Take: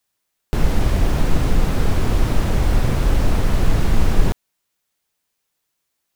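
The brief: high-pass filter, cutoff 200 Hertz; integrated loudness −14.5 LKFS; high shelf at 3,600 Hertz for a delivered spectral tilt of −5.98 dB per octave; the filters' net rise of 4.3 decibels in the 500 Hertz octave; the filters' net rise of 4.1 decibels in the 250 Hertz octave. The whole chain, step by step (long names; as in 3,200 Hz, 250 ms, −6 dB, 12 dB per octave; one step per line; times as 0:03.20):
high-pass filter 200 Hz
parametric band 250 Hz +7 dB
parametric band 500 Hz +3.5 dB
high-shelf EQ 3,600 Hz −5.5 dB
level +9 dB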